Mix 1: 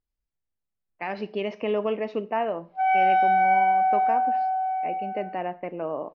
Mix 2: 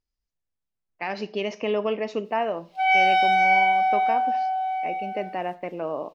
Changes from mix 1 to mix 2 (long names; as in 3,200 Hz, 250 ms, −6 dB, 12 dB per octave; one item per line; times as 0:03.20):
background: add high shelf with overshoot 2,100 Hz +10 dB, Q 1.5
master: remove high-frequency loss of the air 250 metres